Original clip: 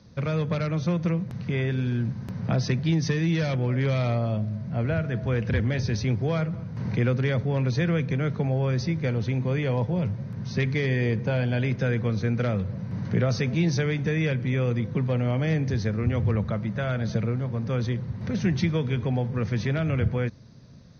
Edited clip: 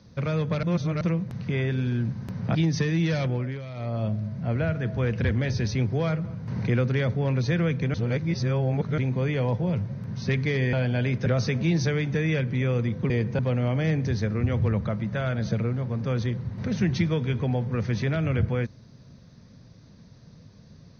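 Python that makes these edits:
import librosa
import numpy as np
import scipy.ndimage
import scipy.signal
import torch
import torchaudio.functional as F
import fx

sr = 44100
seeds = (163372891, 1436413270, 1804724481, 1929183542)

y = fx.edit(x, sr, fx.reverse_span(start_s=0.63, length_s=0.38),
    fx.cut(start_s=2.55, length_s=0.29),
    fx.fade_down_up(start_s=3.57, length_s=0.78, db=-13.0, fade_s=0.32),
    fx.reverse_span(start_s=8.23, length_s=1.04),
    fx.move(start_s=11.02, length_s=0.29, to_s=15.02),
    fx.cut(start_s=11.84, length_s=1.34), tone=tone)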